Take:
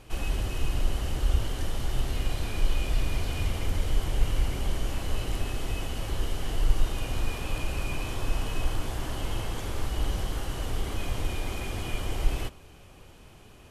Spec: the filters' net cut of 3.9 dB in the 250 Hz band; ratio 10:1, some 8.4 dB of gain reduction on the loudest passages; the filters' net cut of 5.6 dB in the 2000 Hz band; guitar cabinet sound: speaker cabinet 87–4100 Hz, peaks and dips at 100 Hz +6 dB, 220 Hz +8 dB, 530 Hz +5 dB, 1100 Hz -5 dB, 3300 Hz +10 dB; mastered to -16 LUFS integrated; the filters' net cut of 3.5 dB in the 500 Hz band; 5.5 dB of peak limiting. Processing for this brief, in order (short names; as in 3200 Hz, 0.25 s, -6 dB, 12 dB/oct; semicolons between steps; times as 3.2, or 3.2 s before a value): bell 250 Hz -8.5 dB; bell 500 Hz -4.5 dB; bell 2000 Hz -9 dB; compressor 10:1, threshold -24 dBFS; limiter -24 dBFS; speaker cabinet 87–4100 Hz, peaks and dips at 100 Hz +6 dB, 220 Hz +8 dB, 530 Hz +5 dB, 1100 Hz -5 dB, 3300 Hz +10 dB; gain +23.5 dB